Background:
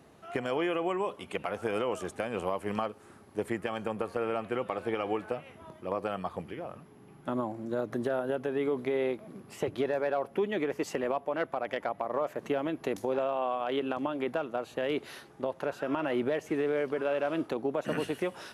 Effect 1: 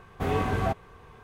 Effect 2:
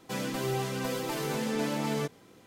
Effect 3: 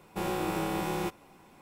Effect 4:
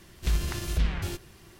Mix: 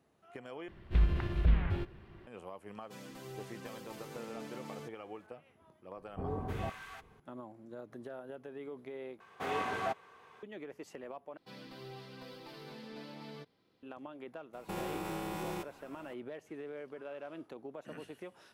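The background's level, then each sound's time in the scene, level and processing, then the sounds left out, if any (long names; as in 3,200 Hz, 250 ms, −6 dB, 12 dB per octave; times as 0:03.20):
background −15 dB
0:00.68: overwrite with 4 −0.5 dB + high-frequency loss of the air 490 metres
0:02.81: mix in 2 −16 dB
0:05.97: mix in 1 −10.5 dB + multiband delay without the direct sound lows, highs 310 ms, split 1,100 Hz
0:09.20: overwrite with 1 −4.5 dB + meter weighting curve A
0:11.37: overwrite with 2 −17.5 dB + high shelf with overshoot 5,600 Hz −7.5 dB, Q 3
0:14.53: mix in 3 −2 dB + downward compressor 5 to 1, threshold −33 dBFS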